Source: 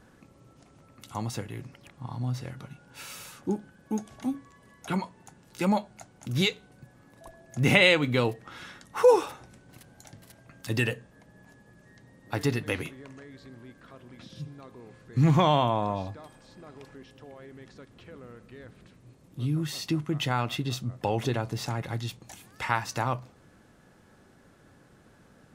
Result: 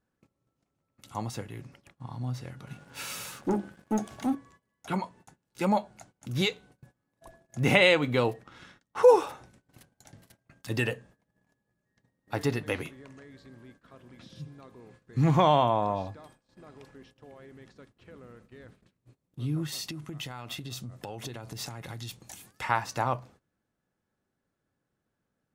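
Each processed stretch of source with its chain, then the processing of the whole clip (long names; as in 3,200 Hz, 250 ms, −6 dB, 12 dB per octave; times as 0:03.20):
0:02.67–0:04.35: high-pass filter 60 Hz + mains-hum notches 50/100/150/200/250/300/350/400 Hz + leveller curve on the samples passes 2
0:08.43–0:09.03: mu-law and A-law mismatch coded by A + low-pass filter 8,900 Hz + low-shelf EQ 470 Hz +4 dB
0:19.72–0:22.62: downward compressor 10 to 1, threshold −32 dBFS + high-shelf EQ 4,900 Hz +8 dB
whole clip: noise gate −51 dBFS, range −21 dB; dynamic equaliser 720 Hz, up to +5 dB, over −37 dBFS, Q 0.75; level −3 dB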